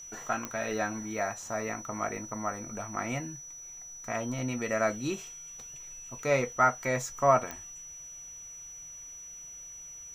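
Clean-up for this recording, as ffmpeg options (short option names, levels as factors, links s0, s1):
-af "adeclick=t=4,bandreject=f=5900:w=30"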